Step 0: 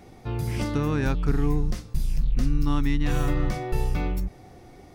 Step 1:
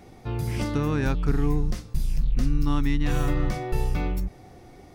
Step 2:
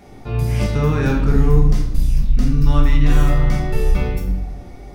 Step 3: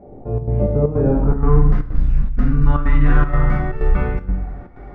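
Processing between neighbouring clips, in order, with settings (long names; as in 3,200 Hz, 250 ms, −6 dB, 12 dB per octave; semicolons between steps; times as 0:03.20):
no processing that can be heard
convolution reverb RT60 0.90 s, pre-delay 5 ms, DRR −1.5 dB; level +2.5 dB
low-pass filter sweep 570 Hz → 1,500 Hz, 0:01.09–0:01.59; square-wave tremolo 2.1 Hz, depth 65%, duty 80%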